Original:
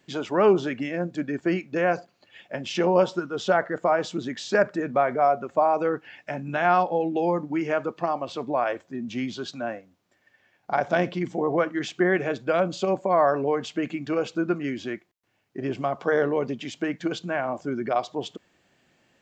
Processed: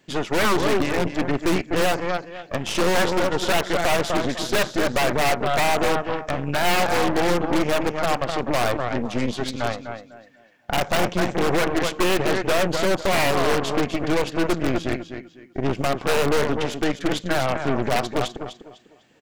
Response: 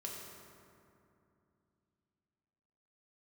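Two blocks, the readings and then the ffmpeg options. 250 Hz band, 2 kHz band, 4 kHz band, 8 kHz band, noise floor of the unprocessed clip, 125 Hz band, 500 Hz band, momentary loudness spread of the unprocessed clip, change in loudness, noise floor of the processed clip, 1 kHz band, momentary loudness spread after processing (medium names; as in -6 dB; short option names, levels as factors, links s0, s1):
+3.0 dB, +5.5 dB, +11.5 dB, no reading, -68 dBFS, +6.5 dB, +1.5 dB, 12 LU, +3.0 dB, -52 dBFS, +2.0 dB, 8 LU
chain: -af "aecho=1:1:250|500|750|1000:0.398|0.119|0.0358|0.0107,aeval=exprs='0.112*(abs(mod(val(0)/0.112+3,4)-2)-1)':c=same,aeval=exprs='0.112*(cos(1*acos(clip(val(0)/0.112,-1,1)))-cos(1*PI/2))+0.0398*(cos(4*acos(clip(val(0)/0.112,-1,1)))-cos(4*PI/2))':c=same,volume=1.5"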